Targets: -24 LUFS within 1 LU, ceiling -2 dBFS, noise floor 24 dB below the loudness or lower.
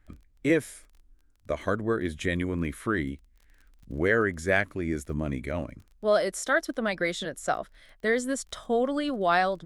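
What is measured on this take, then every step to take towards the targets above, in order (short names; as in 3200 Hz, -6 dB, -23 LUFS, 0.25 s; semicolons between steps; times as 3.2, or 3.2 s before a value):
ticks 26/s; loudness -28.0 LUFS; peak -9.0 dBFS; loudness target -24.0 LUFS
-> de-click; gain +4 dB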